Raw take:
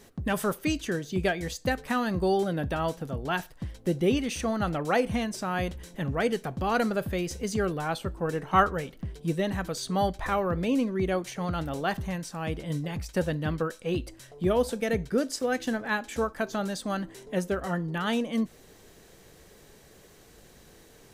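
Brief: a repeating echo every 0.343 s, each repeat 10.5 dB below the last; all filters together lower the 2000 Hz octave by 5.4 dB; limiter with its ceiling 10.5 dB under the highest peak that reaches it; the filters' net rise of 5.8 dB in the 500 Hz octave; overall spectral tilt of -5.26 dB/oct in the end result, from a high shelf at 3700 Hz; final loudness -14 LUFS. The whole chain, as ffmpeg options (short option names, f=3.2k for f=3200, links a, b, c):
-af "equalizer=f=500:t=o:g=7.5,equalizer=f=2k:t=o:g=-6,highshelf=f=3.7k:g=-8.5,alimiter=limit=-17.5dB:level=0:latency=1,aecho=1:1:343|686|1029:0.299|0.0896|0.0269,volume=14dB"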